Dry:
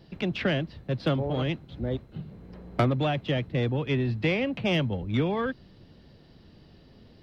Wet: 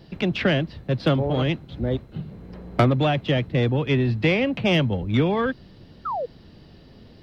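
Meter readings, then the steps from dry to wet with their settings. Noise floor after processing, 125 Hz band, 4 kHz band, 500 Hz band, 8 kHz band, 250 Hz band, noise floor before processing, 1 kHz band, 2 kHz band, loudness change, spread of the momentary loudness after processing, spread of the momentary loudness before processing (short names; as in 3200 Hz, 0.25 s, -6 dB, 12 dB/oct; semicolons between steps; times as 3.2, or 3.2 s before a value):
-49 dBFS, +5.5 dB, +5.5 dB, +5.5 dB, n/a, +5.5 dB, -55 dBFS, +6.5 dB, +5.5 dB, +5.0 dB, 14 LU, 9 LU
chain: painted sound fall, 6.05–6.26, 450–1400 Hz -32 dBFS; gain +5.5 dB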